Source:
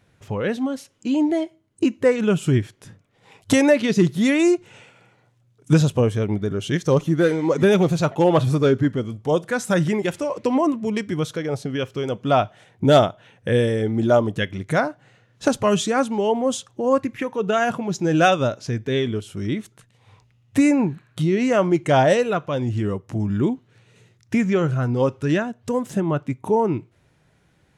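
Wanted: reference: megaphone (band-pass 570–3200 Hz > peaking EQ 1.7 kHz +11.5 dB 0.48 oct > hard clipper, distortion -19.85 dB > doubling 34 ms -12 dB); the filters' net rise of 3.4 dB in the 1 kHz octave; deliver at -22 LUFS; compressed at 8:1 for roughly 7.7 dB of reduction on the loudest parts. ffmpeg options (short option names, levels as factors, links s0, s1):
-filter_complex "[0:a]equalizer=f=1000:t=o:g=4,acompressor=threshold=0.141:ratio=8,highpass=570,lowpass=3200,equalizer=f=1700:t=o:w=0.48:g=11.5,asoftclip=type=hard:threshold=0.211,asplit=2[s0][s1];[s1]adelay=34,volume=0.251[s2];[s0][s2]amix=inputs=2:normalize=0,volume=1.68"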